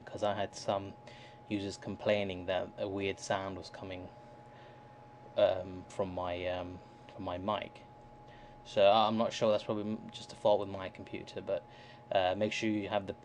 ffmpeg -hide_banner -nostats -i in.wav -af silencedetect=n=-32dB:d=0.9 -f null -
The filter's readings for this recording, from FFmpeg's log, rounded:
silence_start: 3.94
silence_end: 5.38 | silence_duration: 1.44
silence_start: 7.65
silence_end: 8.77 | silence_duration: 1.12